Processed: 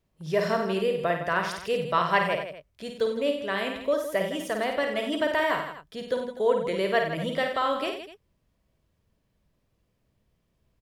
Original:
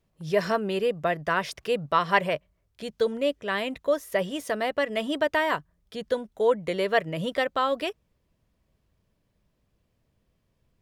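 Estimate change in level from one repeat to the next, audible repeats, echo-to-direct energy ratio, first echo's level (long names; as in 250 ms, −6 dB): repeats not evenly spaced, 4, −3.0 dB, −5.5 dB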